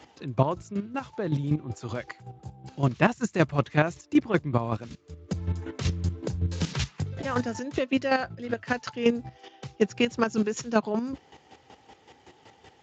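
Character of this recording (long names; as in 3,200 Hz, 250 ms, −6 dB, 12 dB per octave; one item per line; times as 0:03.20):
chopped level 5.3 Hz, depth 65%, duty 25%
Speex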